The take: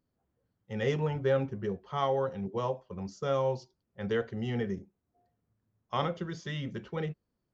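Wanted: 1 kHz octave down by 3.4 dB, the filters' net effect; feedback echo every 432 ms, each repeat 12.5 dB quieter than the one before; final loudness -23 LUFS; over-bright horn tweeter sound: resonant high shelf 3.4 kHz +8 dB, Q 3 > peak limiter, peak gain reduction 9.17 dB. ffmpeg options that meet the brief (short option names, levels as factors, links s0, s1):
-af "equalizer=f=1000:t=o:g=-3.5,highshelf=f=3400:t=q:w=3:g=8,aecho=1:1:432|864|1296:0.237|0.0569|0.0137,volume=5.01,alimiter=limit=0.237:level=0:latency=1"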